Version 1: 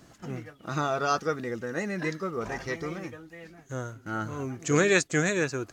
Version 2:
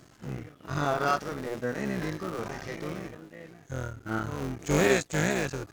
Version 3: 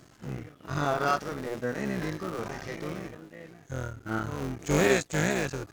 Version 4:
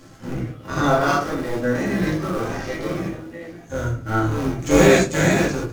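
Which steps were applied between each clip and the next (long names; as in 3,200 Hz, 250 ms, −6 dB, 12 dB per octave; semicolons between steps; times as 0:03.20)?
sub-harmonics by changed cycles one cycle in 3, muted; harmonic and percussive parts rebalanced percussive −17 dB; level +5.5 dB
no processing that can be heard
rectangular room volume 150 cubic metres, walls furnished, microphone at 2.3 metres; level +4 dB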